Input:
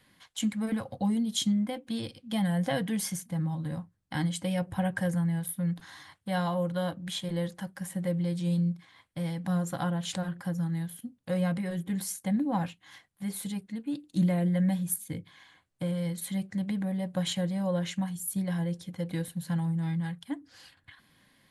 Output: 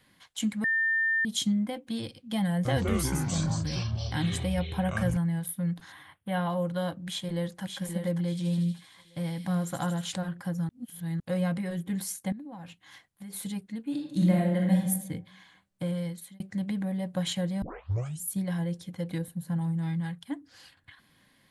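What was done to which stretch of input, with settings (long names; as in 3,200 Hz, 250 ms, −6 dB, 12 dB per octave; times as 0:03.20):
0:00.64–0:01.25: beep over 1,800 Hz −23 dBFS
0:02.54–0:05.17: delay with pitch and tempo change per echo 110 ms, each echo −6 semitones, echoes 3
0:05.92–0:06.50: flat-topped bell 5,700 Hz −15.5 dB 1.1 octaves
0:07.06–0:07.62: delay throw 580 ms, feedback 25%, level −5.5 dB
0:08.24–0:10.10: delay with a high-pass on its return 78 ms, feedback 80%, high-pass 3,100 Hz, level −5.5 dB
0:10.69–0:11.20: reverse
0:12.32–0:13.33: downward compressor 12 to 1, threshold −39 dBFS
0:13.85–0:14.79: thrown reverb, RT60 0.96 s, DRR −1 dB
0:15.97–0:16.40: fade out linear
0:17.62: tape start 0.59 s
0:19.18–0:19.61: parametric band 3,500 Hz −10 dB 2.8 octaves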